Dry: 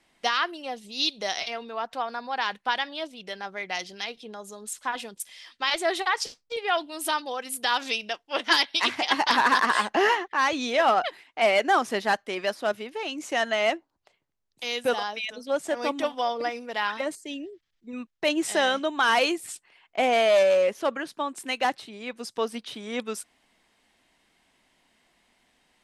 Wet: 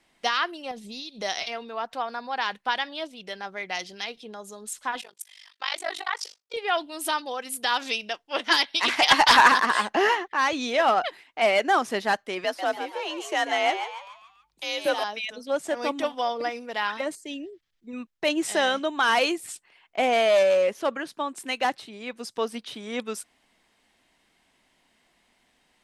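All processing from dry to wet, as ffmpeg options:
-filter_complex "[0:a]asettb=1/sr,asplit=3[s0][s1][s2];[s0]atrim=end=0.714[s3];[s1]atrim=start=0.71:end=1.22,asetpts=PTS-STARTPTS,afade=t=in:d=0.004:c=qsin,afade=t=out:st=0.506:d=0.004:c=qsin,lowshelf=f=380:g=7,acompressor=threshold=0.0224:ratio=10:attack=3.2:release=140:knee=1:detection=peak,bandreject=f=2900:w=18[s4];[s2]atrim=start=1.216[s5];[s3][s4]acrossfade=d=0.004:c1=hsin:c2=qsin[s6];[s6][s5]acrossfade=d=0.004:c1=qsin:c2=hsin,asettb=1/sr,asplit=3[s7][s8][s9];[s7]atrim=end=5.014[s10];[s8]atrim=start=5.01:end=6.54,asetpts=PTS-STARTPTS,afade=t=in:d=0.004:c=qsin,afade=t=out:st=1.526:d=0.004:c=qsin,highpass=650,tremolo=f=49:d=0.974[s11];[s9]atrim=start=6.536[s12];[s10][s11]acrossfade=d=0.004:c1=hsin:c2=qsin[s13];[s13][s12]acrossfade=d=0.004:c1=qsin:c2=hsin,asettb=1/sr,asplit=3[s14][s15][s16];[s14]atrim=end=8.884[s17];[s15]atrim=start=8.88:end=9.52,asetpts=PTS-STARTPTS,afade=t=in:d=0.004:c=qsin,afade=t=out:st=0.636:d=0.004:c=qsin,highpass=f=620:p=1,aeval=exprs='0.398*sin(PI/2*1.78*val(0)/0.398)':c=same[s18];[s16]atrim=start=9.516[s19];[s17][s18]acrossfade=d=0.004:c1=hsin:c2=qsin[s20];[s20][s19]acrossfade=d=0.004:c1=qsin:c2=hsin,asettb=1/sr,asplit=3[s21][s22][s23];[s21]atrim=end=12.444[s24];[s22]atrim=start=12.44:end=15.04,asetpts=PTS-STARTPTS,afade=t=in:d=0.004:c=qsin,afade=t=out:st=2.596:d=0.004:c=qsin,asplit=6[s25][s26][s27][s28][s29][s30];[s26]adelay=142,afreqshift=99,volume=0.376[s31];[s27]adelay=284,afreqshift=198,volume=0.166[s32];[s28]adelay=426,afreqshift=297,volume=0.0724[s33];[s29]adelay=568,afreqshift=396,volume=0.032[s34];[s30]adelay=710,afreqshift=495,volume=0.0141[s35];[s25][s31][s32][s33][s34][s35]amix=inputs=6:normalize=0,atrim=end_sample=114660,afreqshift=49[s36];[s23]atrim=start=15.036[s37];[s24][s36]acrossfade=d=0.004:c1=hsin:c2=qsin[s38];[s38][s37]acrossfade=d=0.004:c1=qsin:c2=hsin"

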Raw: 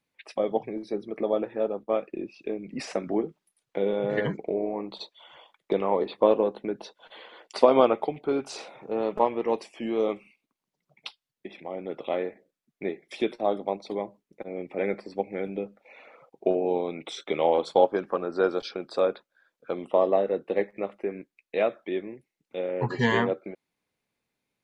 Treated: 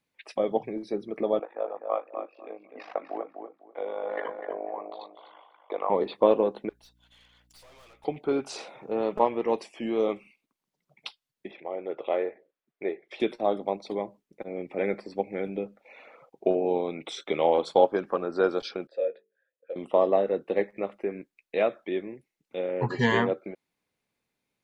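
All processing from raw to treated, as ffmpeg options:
-filter_complex "[0:a]asettb=1/sr,asplit=3[s0][s1][s2];[s0]atrim=end=1.394[s3];[s1]atrim=start=1.39:end=5.9,asetpts=PTS-STARTPTS,afade=t=in:d=0.004:c=qsin,afade=t=out:st=4.506:d=0.004:c=qsin,tremolo=f=51:d=0.788,highpass=f=380:w=0.5412,highpass=f=380:w=1.3066,equalizer=f=390:t=q:w=4:g=-10,equalizer=f=740:t=q:w=4:g=5,equalizer=f=1100:t=q:w=4:g=8,equalizer=f=1800:t=q:w=4:g=-3,equalizer=f=2700:t=q:w=4:g=-6,lowpass=f=3100:w=0.5412,lowpass=f=3100:w=1.3066,asplit=2[s4][s5];[s5]adelay=250,lowpass=f=1900:p=1,volume=0.501,asplit=2[s6][s7];[s7]adelay=250,lowpass=f=1900:p=1,volume=0.23,asplit=2[s8][s9];[s9]adelay=250,lowpass=f=1900:p=1,volume=0.23[s10];[s4][s6][s8][s10]amix=inputs=4:normalize=0,atrim=end_sample=198891[s11];[s2]atrim=start=5.896[s12];[s3][s11]acrossfade=d=0.004:c1=hsin:c2=qsin[s13];[s13][s12]acrossfade=d=0.004:c1=qsin:c2=hsin,asettb=1/sr,asplit=3[s14][s15][s16];[s14]atrim=end=6.694[s17];[s15]atrim=start=6.69:end=8.05,asetpts=PTS-STARTPTS,afade=t=in:d=0.004:c=qsin,afade=t=out:st=1.356:d=0.004:c=qsin,aderivative,aeval=exprs='(tanh(447*val(0)+0.4)-tanh(0.4))/447':c=same,aeval=exprs='val(0)+0.000501*(sin(2*PI*60*n/s)+sin(2*PI*2*60*n/s)/2+sin(2*PI*3*60*n/s)/3+sin(2*PI*4*60*n/s)/4+sin(2*PI*5*60*n/s)/5)':c=same[s18];[s16]atrim=start=8.046[s19];[s17][s18]acrossfade=d=0.004:c1=hsin:c2=qsin[s20];[s20][s19]acrossfade=d=0.004:c1=qsin:c2=hsin,asettb=1/sr,asplit=3[s21][s22][s23];[s21]atrim=end=11.514[s24];[s22]atrim=start=11.51:end=13.2,asetpts=PTS-STARTPTS,afade=t=in:d=0.004:c=qsin,afade=t=out:st=1.686:d=0.004:c=qsin,lowpass=3000,lowshelf=f=300:t=q:w=1.5:g=-8[s25];[s23]atrim=start=13.196[s26];[s24][s25]acrossfade=d=0.004:c1=hsin:c2=qsin[s27];[s27][s26]acrossfade=d=0.004:c1=qsin:c2=hsin,asettb=1/sr,asplit=3[s28][s29][s30];[s28]atrim=end=18.874[s31];[s29]atrim=start=18.87:end=19.76,asetpts=PTS-STARTPTS,afade=t=in:d=0.004:c=qsin,afade=t=out:st=0.886:d=0.004:c=qsin,asplit=3[s32][s33][s34];[s32]bandpass=f=530:t=q:w=8,volume=1[s35];[s33]bandpass=f=1840:t=q:w=8,volume=0.501[s36];[s34]bandpass=f=2480:t=q:w=8,volume=0.355[s37];[s35][s36][s37]amix=inputs=3:normalize=0,bandreject=f=50:t=h:w=6,bandreject=f=100:t=h:w=6,bandreject=f=150:t=h:w=6,bandreject=f=200:t=h:w=6,bandreject=f=250:t=h:w=6,bandreject=f=300:t=h:w=6,bandreject=f=350:t=h:w=6,bandreject=f=400:t=h:w=6,bandreject=f=450:t=h:w=6,asplit=2[s38][s39];[s39]adelay=15,volume=0.251[s40];[s38][s40]amix=inputs=2:normalize=0,atrim=end_sample=39249[s41];[s30]atrim=start=19.756[s42];[s31][s41]acrossfade=d=0.004:c1=hsin:c2=qsin[s43];[s43][s42]acrossfade=d=0.004:c1=qsin:c2=hsin"

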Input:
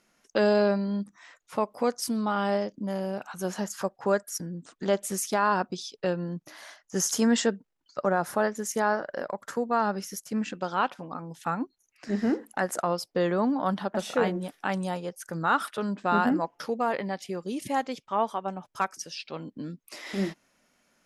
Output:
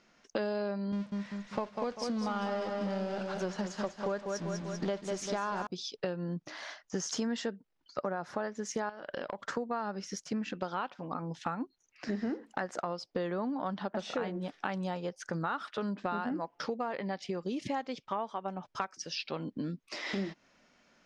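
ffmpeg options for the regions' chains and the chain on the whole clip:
-filter_complex "[0:a]asettb=1/sr,asplit=3[s0][s1][s2];[s0]atrim=end=0.924[s3];[s1]atrim=start=0.92:end=5.67,asetpts=PTS-STARTPTS,afade=t=in:d=0.004:c=qsin,afade=t=out:st=4.746:d=0.004:c=qsin,aeval=exprs='val(0)+0.5*0.0211*sgn(val(0))':c=same,agate=range=0.0224:threshold=0.0355:ratio=3:release=100:detection=peak,aecho=1:1:196|392|588|784|980:0.447|0.201|0.0905|0.0407|0.0183,atrim=end_sample=209475[s4];[s2]atrim=start=5.666[s5];[s3][s4]acrossfade=d=0.004:c1=hsin:c2=qsin[s6];[s6][s5]acrossfade=d=0.004:c1=qsin:c2=hsin,asettb=1/sr,asplit=3[s7][s8][s9];[s7]atrim=end=8.894[s10];[s8]atrim=start=8.89:end=9.45,asetpts=PTS-STARTPTS,afade=t=in:d=0.004:c=qsin,afade=t=out:st=0.556:d=0.004:c=qsin,acompressor=threshold=0.02:ratio=8:attack=3.2:release=140:knee=1:detection=peak,equalizer=f=3200:w=2.4:g=13[s11];[s9]atrim=start=9.446[s12];[s10][s11]acrossfade=d=0.004:c1=hsin:c2=qsin[s13];[s13][s12]acrossfade=d=0.004:c1=qsin:c2=hsin,lowpass=f=5800:w=0.5412,lowpass=f=5800:w=1.3066,acompressor=threshold=0.0178:ratio=6,volume=1.41"

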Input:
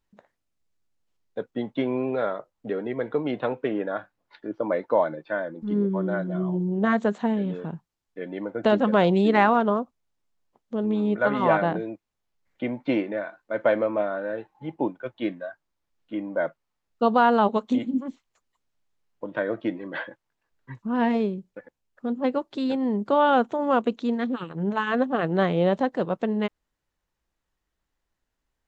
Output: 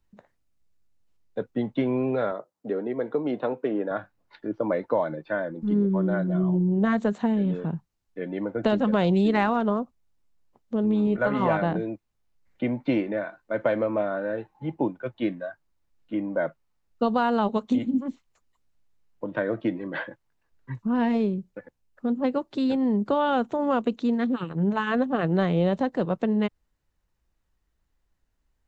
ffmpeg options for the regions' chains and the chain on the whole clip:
-filter_complex "[0:a]asettb=1/sr,asplit=3[s0][s1][s2];[s0]atrim=end=2.314[s3];[s1]atrim=start=2.31:end=3.91,asetpts=PTS-STARTPTS,afade=t=in:d=0.004:c=qsin,afade=t=out:st=1.596:d=0.004:c=qsin,highpass=230,equalizer=f=2400:t=o:w=1.6:g=-6.5[s4];[s2]atrim=start=3.906[s5];[s3][s4]acrossfade=d=0.004:c1=hsin:c2=qsin[s6];[s6][s5]acrossfade=d=0.004:c1=qsin:c2=hsin,asettb=1/sr,asplit=3[s7][s8][s9];[s7]atrim=end=11.044[s10];[s8]atrim=start=11.04:end=11.53,asetpts=PTS-STARTPTS,afade=t=in:d=0.004:c=qsin,afade=t=out:st=0.486:d=0.004:c=qsin,bandreject=f=3600:w=13,asplit=2[s11][s12];[s12]adelay=26,volume=0.251[s13];[s11][s13]amix=inputs=2:normalize=0,atrim=end_sample=21609[s14];[s9]atrim=start=11.526[s15];[s10][s14]acrossfade=d=0.004:c1=hsin:c2=qsin[s16];[s16][s15]acrossfade=d=0.004:c1=qsin:c2=hsin,lowshelf=f=180:g=9.5,bandreject=f=3300:w=28,acrossover=split=120|3000[s17][s18][s19];[s18]acompressor=threshold=0.0891:ratio=2.5[s20];[s17][s20][s19]amix=inputs=3:normalize=0"

